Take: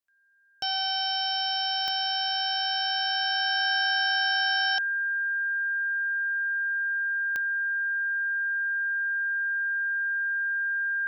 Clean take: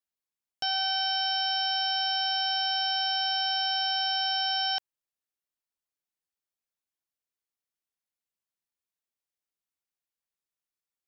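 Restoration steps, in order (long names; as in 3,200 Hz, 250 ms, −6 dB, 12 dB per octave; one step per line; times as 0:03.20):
click removal
notch filter 1,600 Hz, Q 30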